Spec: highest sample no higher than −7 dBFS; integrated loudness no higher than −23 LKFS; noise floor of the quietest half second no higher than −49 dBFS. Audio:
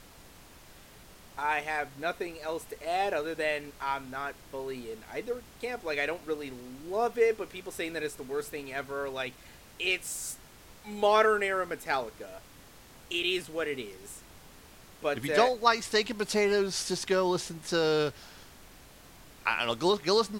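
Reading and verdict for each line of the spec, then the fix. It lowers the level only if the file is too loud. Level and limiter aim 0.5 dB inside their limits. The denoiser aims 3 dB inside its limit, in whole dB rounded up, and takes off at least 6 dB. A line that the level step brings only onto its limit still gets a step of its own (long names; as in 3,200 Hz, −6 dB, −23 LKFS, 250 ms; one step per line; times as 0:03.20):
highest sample −8.5 dBFS: in spec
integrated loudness −30.5 LKFS: in spec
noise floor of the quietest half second −53 dBFS: in spec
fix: no processing needed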